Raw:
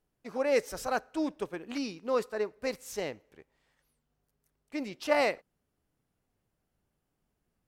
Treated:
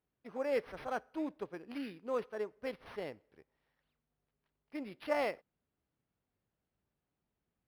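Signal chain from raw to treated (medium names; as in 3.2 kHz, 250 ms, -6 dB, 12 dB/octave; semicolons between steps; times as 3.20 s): high-pass 44 Hz; decimation joined by straight lines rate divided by 6×; trim -6.5 dB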